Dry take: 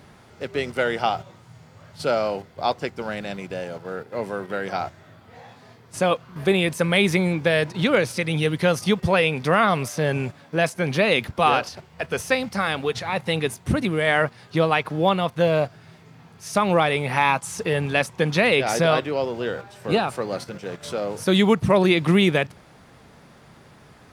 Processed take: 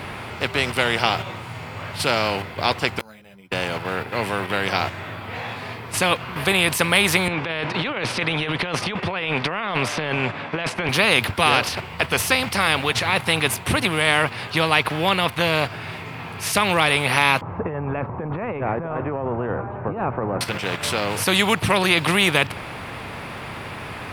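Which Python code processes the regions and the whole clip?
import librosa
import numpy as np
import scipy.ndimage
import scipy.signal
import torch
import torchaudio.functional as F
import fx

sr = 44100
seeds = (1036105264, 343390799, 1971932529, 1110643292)

y = fx.chain(x, sr, fx.resample_bad(factor=8, down='filtered', up='hold'),
    fx.gate_flip(shuts_db=-27.0, range_db=-31),
    fx.ensemble(), at=(2.99, 3.52))
y = fx.chain(y, sr, fx.highpass(hz=180.0, slope=12),
    fx.over_compress(threshold_db=-28.0, ratio=-1.0),
    fx.spacing_loss(db_at_10k=22), at=(7.28, 10.89))
y = fx.chain(y, sr, fx.law_mismatch(coded='mu'),
    fx.bessel_lowpass(hz=650.0, order=4),
    fx.over_compress(threshold_db=-28.0, ratio=-1.0), at=(17.41, 20.41))
y = fx.graphic_eq_15(y, sr, hz=(100, 1000, 2500, 6300), db=(10, 5, 9, -8))
y = fx.spectral_comp(y, sr, ratio=2.0)
y = F.gain(torch.from_numpy(y), -1.0).numpy()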